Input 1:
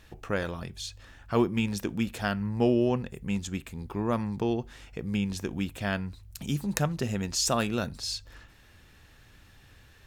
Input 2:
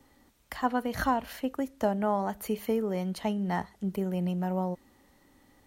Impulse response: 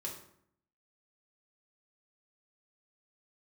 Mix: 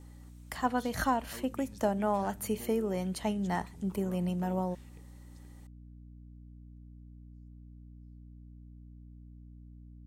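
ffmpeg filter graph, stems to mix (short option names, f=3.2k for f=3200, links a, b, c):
-filter_complex "[0:a]acompressor=threshold=-30dB:ratio=6,volume=-15.5dB[a];[1:a]equalizer=f=8.3k:t=o:w=0.87:g=8,volume=-2dB,asplit=2[b][c];[c]apad=whole_len=443675[d];[a][d]sidechaingate=range=-50dB:threshold=-59dB:ratio=16:detection=peak[e];[e][b]amix=inputs=2:normalize=0,aeval=exprs='val(0)+0.00355*(sin(2*PI*60*n/s)+sin(2*PI*2*60*n/s)/2+sin(2*PI*3*60*n/s)/3+sin(2*PI*4*60*n/s)/4+sin(2*PI*5*60*n/s)/5)':c=same"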